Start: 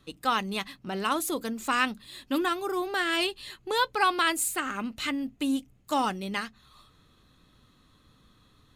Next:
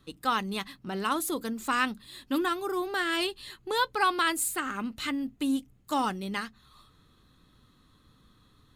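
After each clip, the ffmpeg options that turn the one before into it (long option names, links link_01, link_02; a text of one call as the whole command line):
ffmpeg -i in.wav -af "equalizer=frequency=630:width_type=o:width=0.67:gain=-4,equalizer=frequency=2500:width_type=o:width=0.67:gain=-4,equalizer=frequency=6300:width_type=o:width=0.67:gain=-3" out.wav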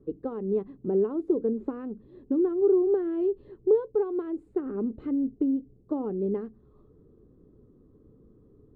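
ffmpeg -i in.wav -af "acompressor=threshold=-30dB:ratio=10,lowpass=frequency=420:width_type=q:width=4.9,volume=3dB" out.wav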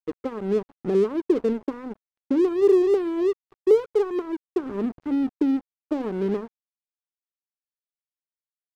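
ffmpeg -i in.wav -af "aeval=exprs='sgn(val(0))*max(abs(val(0))-0.00944,0)':channel_layout=same,volume=5dB" out.wav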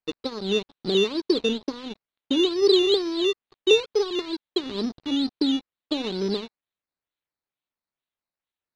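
ffmpeg -i in.wav -af "acrusher=samples=11:mix=1:aa=0.000001:lfo=1:lforange=6.6:lforate=2.2,lowpass=frequency=4000:width_type=q:width=4.1,volume=-1.5dB" out.wav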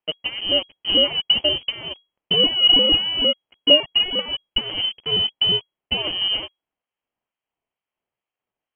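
ffmpeg -i in.wav -af "aexciter=amount=3.3:drive=7.8:freq=2600,lowpass=frequency=2800:width_type=q:width=0.5098,lowpass=frequency=2800:width_type=q:width=0.6013,lowpass=frequency=2800:width_type=q:width=0.9,lowpass=frequency=2800:width_type=q:width=2.563,afreqshift=-3300,volume=3.5dB" out.wav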